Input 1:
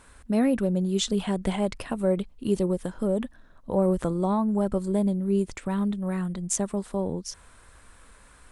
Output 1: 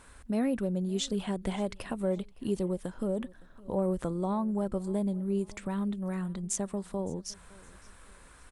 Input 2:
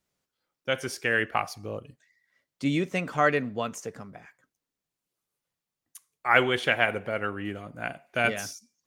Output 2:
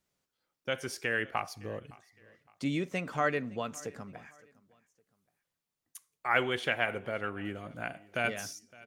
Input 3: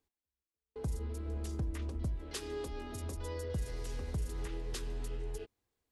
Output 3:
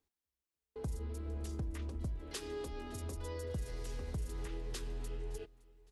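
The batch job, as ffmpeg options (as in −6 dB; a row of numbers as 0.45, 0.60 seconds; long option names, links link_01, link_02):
-filter_complex "[0:a]asplit=2[link_01][link_02];[link_02]acompressor=threshold=-36dB:ratio=6,volume=1.5dB[link_03];[link_01][link_03]amix=inputs=2:normalize=0,aecho=1:1:563|1126:0.0708|0.0255,volume=-8dB"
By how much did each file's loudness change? −6.0, −6.5, −2.5 LU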